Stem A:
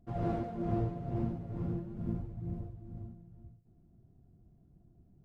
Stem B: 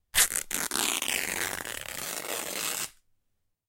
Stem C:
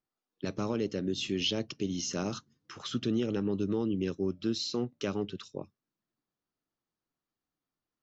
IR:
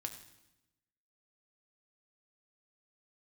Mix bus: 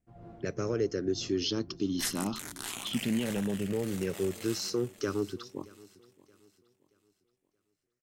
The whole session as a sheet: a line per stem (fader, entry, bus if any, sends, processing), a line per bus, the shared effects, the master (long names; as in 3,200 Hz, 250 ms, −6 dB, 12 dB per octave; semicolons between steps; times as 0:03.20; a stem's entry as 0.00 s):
−16.5 dB, 0.00 s, no send, no echo send, no processing
−12.5 dB, 1.85 s, no send, echo send −11 dB, no processing
−1.5 dB, 0.00 s, no send, echo send −22.5 dB, rippled gain that drifts along the octave scale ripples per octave 0.51, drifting −0.26 Hz, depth 13 dB; notch filter 3,800 Hz, Q 13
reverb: not used
echo: repeating echo 626 ms, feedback 36%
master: no processing